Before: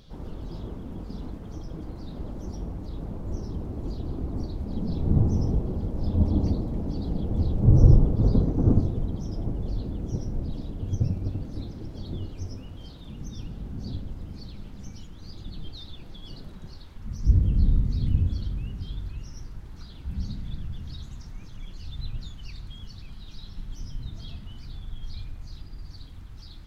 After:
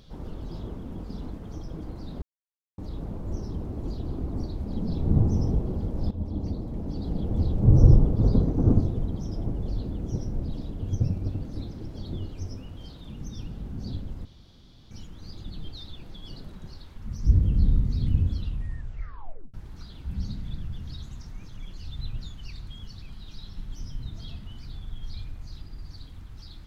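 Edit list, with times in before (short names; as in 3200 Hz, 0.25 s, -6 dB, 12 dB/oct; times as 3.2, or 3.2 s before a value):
2.22–2.78 mute
6.11–7.26 fade in, from -12 dB
14.25–14.91 room tone
18.33 tape stop 1.21 s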